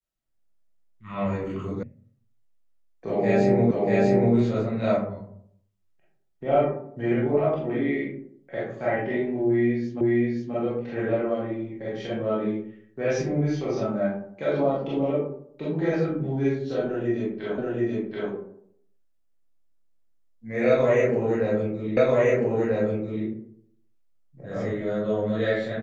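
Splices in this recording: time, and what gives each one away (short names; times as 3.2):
1.83 sound cut off
3.71 repeat of the last 0.64 s
10.01 repeat of the last 0.53 s
17.58 repeat of the last 0.73 s
21.97 repeat of the last 1.29 s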